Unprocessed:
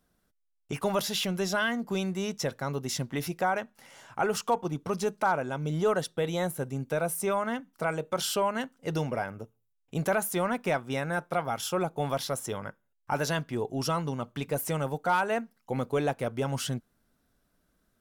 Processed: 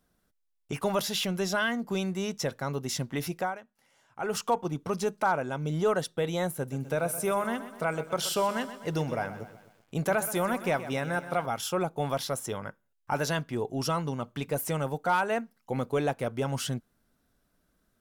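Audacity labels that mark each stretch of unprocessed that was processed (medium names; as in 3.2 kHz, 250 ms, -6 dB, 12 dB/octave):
3.370000	4.360000	dip -14 dB, fades 0.21 s
6.550000	11.460000	bit-crushed delay 126 ms, feedback 55%, word length 9-bit, level -13 dB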